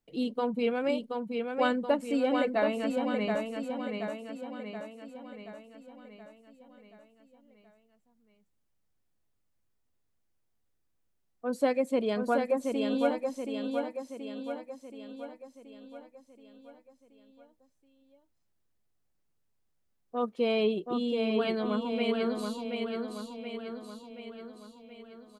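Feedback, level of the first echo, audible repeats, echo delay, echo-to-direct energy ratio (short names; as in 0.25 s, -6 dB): 55%, -4.5 dB, 6, 0.727 s, -3.0 dB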